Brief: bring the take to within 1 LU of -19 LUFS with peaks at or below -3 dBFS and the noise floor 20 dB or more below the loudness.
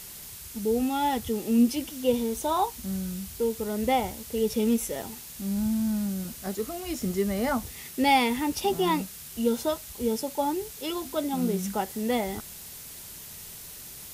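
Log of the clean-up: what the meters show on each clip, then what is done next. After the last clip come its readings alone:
noise floor -43 dBFS; noise floor target -48 dBFS; loudness -28.0 LUFS; peak level -10.5 dBFS; loudness target -19.0 LUFS
-> noise reduction 6 dB, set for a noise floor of -43 dBFS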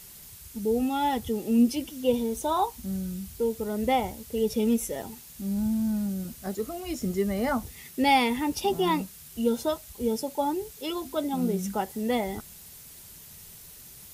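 noise floor -48 dBFS; loudness -28.0 LUFS; peak level -10.5 dBFS; loudness target -19.0 LUFS
-> trim +9 dB; peak limiter -3 dBFS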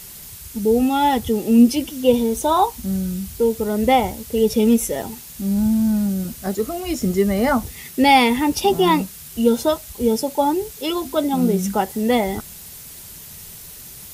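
loudness -19.0 LUFS; peak level -3.0 dBFS; noise floor -39 dBFS

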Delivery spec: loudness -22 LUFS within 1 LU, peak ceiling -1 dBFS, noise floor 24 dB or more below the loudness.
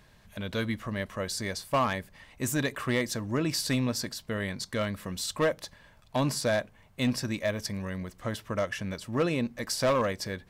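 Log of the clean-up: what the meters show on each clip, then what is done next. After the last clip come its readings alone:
clipped samples 0.9%; clipping level -20.0 dBFS; loudness -30.5 LUFS; peak level -20.0 dBFS; loudness target -22.0 LUFS
-> clip repair -20 dBFS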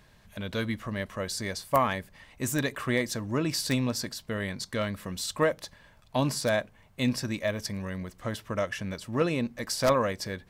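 clipped samples 0.0%; loudness -30.0 LUFS; peak level -11.0 dBFS; loudness target -22.0 LUFS
-> trim +8 dB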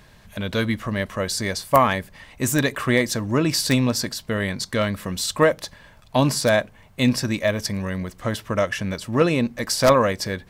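loudness -22.0 LUFS; peak level -3.0 dBFS; noise floor -50 dBFS

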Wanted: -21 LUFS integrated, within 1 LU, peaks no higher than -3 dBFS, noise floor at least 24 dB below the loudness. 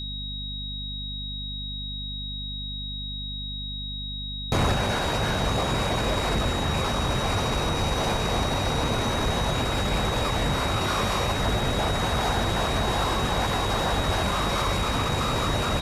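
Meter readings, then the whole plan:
hum 50 Hz; highest harmonic 250 Hz; hum level -33 dBFS; steady tone 3.8 kHz; tone level -33 dBFS; loudness -26.0 LUFS; peak level -14.0 dBFS; loudness target -21.0 LUFS
-> hum notches 50/100/150/200/250 Hz; band-stop 3.8 kHz, Q 30; trim +5 dB

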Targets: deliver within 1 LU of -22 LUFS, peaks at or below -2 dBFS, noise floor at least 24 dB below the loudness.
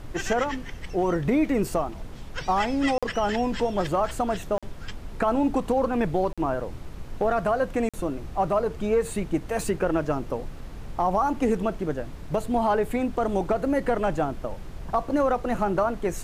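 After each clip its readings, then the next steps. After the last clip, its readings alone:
dropouts 4; longest dropout 46 ms; noise floor -39 dBFS; noise floor target -50 dBFS; loudness -26.0 LUFS; peak level -12.5 dBFS; loudness target -22.0 LUFS
-> interpolate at 2.98/4.58/6.33/7.89 s, 46 ms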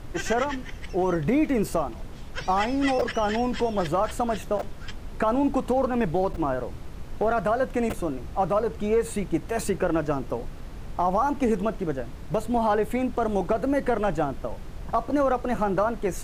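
dropouts 0; noise floor -39 dBFS; noise floor target -50 dBFS
-> noise print and reduce 11 dB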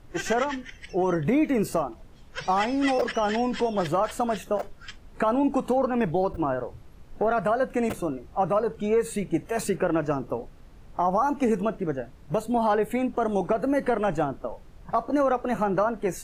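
noise floor -48 dBFS; noise floor target -50 dBFS
-> noise print and reduce 6 dB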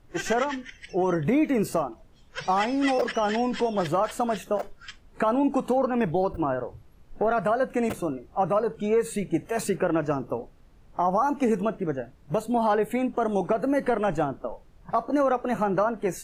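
noise floor -53 dBFS; loudness -26.0 LUFS; peak level -12.5 dBFS; loudness target -22.0 LUFS
-> trim +4 dB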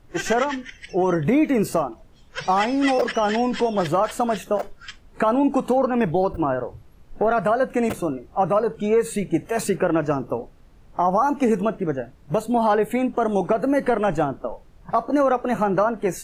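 loudness -22.0 LUFS; peak level -8.5 dBFS; noise floor -49 dBFS

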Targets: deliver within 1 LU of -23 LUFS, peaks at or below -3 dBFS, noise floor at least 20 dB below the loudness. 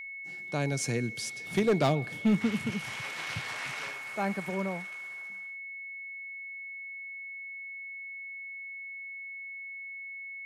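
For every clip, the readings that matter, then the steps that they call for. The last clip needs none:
clipped samples 0.3%; clipping level -19.0 dBFS; steady tone 2.2 kHz; tone level -39 dBFS; loudness -34.0 LUFS; peak level -19.0 dBFS; loudness target -23.0 LUFS
-> clip repair -19 dBFS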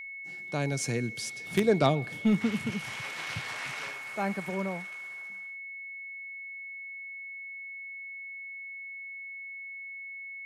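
clipped samples 0.0%; steady tone 2.2 kHz; tone level -39 dBFS
-> band-stop 2.2 kHz, Q 30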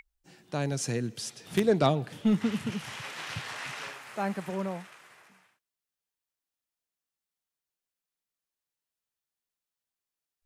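steady tone not found; loudness -31.0 LUFS; peak level -10.0 dBFS; loudness target -23.0 LUFS
-> trim +8 dB; peak limiter -3 dBFS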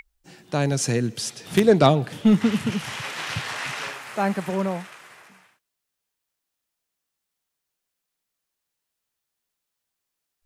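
loudness -23.0 LUFS; peak level -3.0 dBFS; noise floor -82 dBFS

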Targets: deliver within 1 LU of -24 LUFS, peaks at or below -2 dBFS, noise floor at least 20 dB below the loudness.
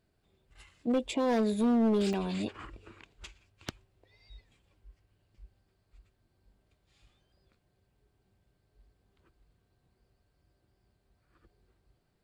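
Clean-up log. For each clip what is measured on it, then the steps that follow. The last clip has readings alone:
clipped samples 0.9%; clipping level -22.5 dBFS; dropouts 1; longest dropout 2.9 ms; loudness -29.5 LUFS; peak level -22.5 dBFS; loudness target -24.0 LUFS
-> clip repair -22.5 dBFS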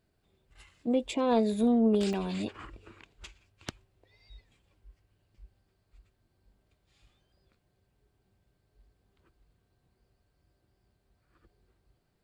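clipped samples 0.0%; dropouts 1; longest dropout 2.9 ms
-> interpolate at 2.13 s, 2.9 ms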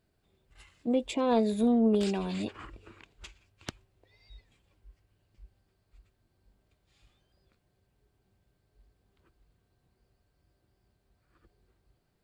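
dropouts 0; loudness -28.5 LUFS; peak level -14.0 dBFS; loudness target -24.0 LUFS
-> trim +4.5 dB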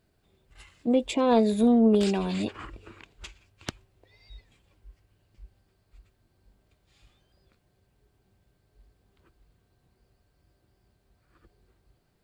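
loudness -24.5 LUFS; peak level -9.5 dBFS; noise floor -71 dBFS

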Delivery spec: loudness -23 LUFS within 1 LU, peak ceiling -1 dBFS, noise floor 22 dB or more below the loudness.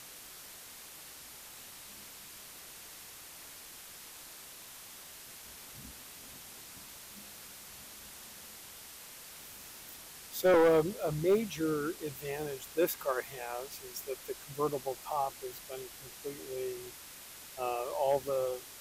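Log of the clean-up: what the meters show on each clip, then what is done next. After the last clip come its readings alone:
clipped samples 0.4%; clipping level -20.5 dBFS; noise floor -50 dBFS; noise floor target -56 dBFS; loudness -34.0 LUFS; peak level -20.5 dBFS; loudness target -23.0 LUFS
-> clip repair -20.5 dBFS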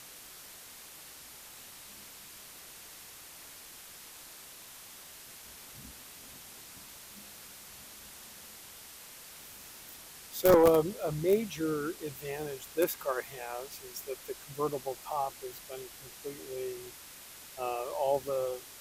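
clipped samples 0.0%; noise floor -50 dBFS; noise floor target -54 dBFS
-> noise reduction 6 dB, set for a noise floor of -50 dBFS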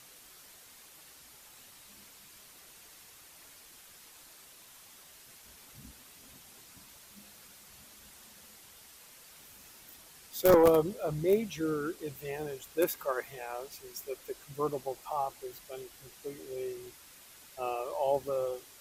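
noise floor -55 dBFS; loudness -32.0 LUFS; peak level -11.5 dBFS; loudness target -23.0 LUFS
-> trim +9 dB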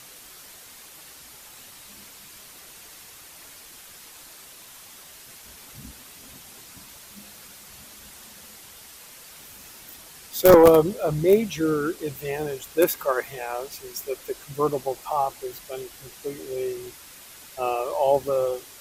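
loudness -23.0 LUFS; peak level -2.5 dBFS; noise floor -46 dBFS

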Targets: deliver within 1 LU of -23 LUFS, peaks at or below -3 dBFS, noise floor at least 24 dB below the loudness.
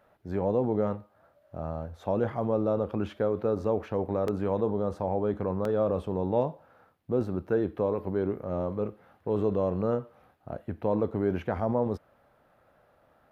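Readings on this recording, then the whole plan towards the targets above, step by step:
dropouts 2; longest dropout 2.5 ms; loudness -30.0 LUFS; peak level -14.5 dBFS; loudness target -23.0 LUFS
-> interpolate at 4.28/5.65 s, 2.5 ms; trim +7 dB

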